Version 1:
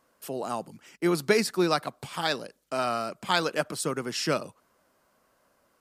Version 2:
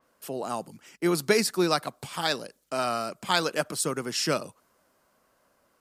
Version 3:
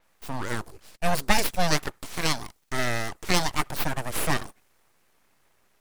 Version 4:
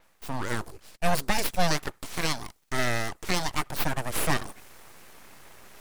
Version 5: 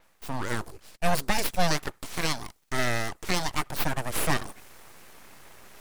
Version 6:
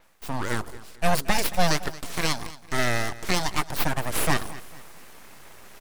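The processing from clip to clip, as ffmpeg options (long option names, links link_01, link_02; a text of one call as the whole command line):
ffmpeg -i in.wav -af "adynamicequalizer=threshold=0.00708:dfrequency=4600:dqfactor=0.7:tfrequency=4600:tqfactor=0.7:attack=5:release=100:ratio=0.375:range=2.5:mode=boostabove:tftype=highshelf" out.wav
ffmpeg -i in.wav -af "aeval=exprs='abs(val(0))':channel_layout=same,volume=3.5dB" out.wav
ffmpeg -i in.wav -af "areverse,acompressor=mode=upward:threshold=-33dB:ratio=2.5,areverse,alimiter=limit=-10dB:level=0:latency=1:release=215" out.wav
ffmpeg -i in.wav -af anull out.wav
ffmpeg -i in.wav -af "aecho=1:1:225|450|675:0.126|0.0491|0.0191,volume=2.5dB" out.wav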